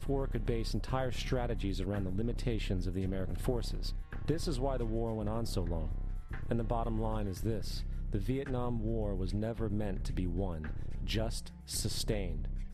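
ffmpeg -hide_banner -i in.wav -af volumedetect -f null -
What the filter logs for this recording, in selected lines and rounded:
mean_volume: -33.9 dB
max_volume: -19.1 dB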